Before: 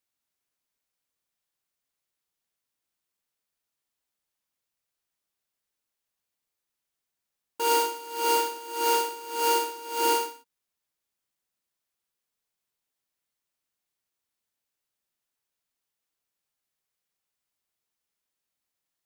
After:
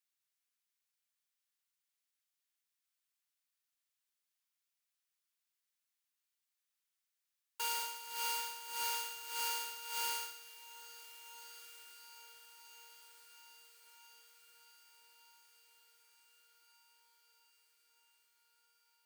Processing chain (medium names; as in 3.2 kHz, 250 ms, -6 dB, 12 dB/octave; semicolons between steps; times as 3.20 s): high-pass 1.4 kHz 12 dB/octave; compression, threshold -31 dBFS, peak gain reduction 7.5 dB; echo that smears into a reverb 1583 ms, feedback 59%, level -14.5 dB; trim -3 dB